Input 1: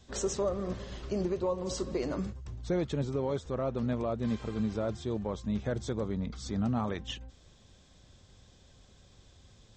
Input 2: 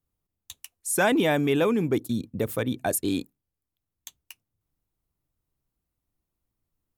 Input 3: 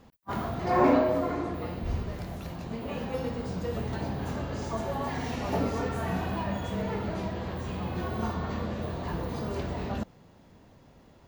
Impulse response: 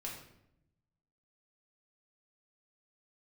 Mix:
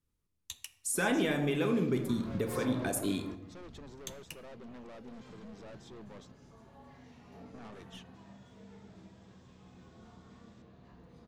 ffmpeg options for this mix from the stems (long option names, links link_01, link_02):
-filter_complex "[0:a]highpass=200,aeval=exprs='(tanh(112*val(0)+0.4)-tanh(0.4))/112':channel_layout=same,adelay=850,volume=-6.5dB,asplit=3[link_01][link_02][link_03];[link_01]atrim=end=6.32,asetpts=PTS-STARTPTS,afade=type=out:start_time=6.316:duration=0.004:curve=hsin[link_04];[link_02]atrim=start=6.32:end=7.54,asetpts=PTS-STARTPTS,volume=0[link_05];[link_03]atrim=start=7.54,asetpts=PTS-STARTPTS,afade=type=in:duration=0.004:curve=hsin[link_06];[link_04][link_05][link_06]concat=n=3:v=0:a=1[link_07];[1:a]volume=-1.5dB,asplit=3[link_08][link_09][link_10];[link_09]volume=-8dB[link_11];[2:a]adelay=1800,volume=-10dB,asplit=2[link_12][link_13];[link_13]volume=-14.5dB[link_14];[link_10]apad=whole_len=576595[link_15];[link_12][link_15]sidechaingate=range=-22dB:threshold=-46dB:ratio=16:detection=peak[link_16];[link_08][link_16]amix=inputs=2:normalize=0,asuperstop=centerf=750:order=20:qfactor=5.6,acompressor=threshold=-34dB:ratio=4,volume=0dB[link_17];[3:a]atrim=start_sample=2205[link_18];[link_11][link_14]amix=inputs=2:normalize=0[link_19];[link_19][link_18]afir=irnorm=-1:irlink=0[link_20];[link_07][link_17][link_20]amix=inputs=3:normalize=0,lowpass=11000"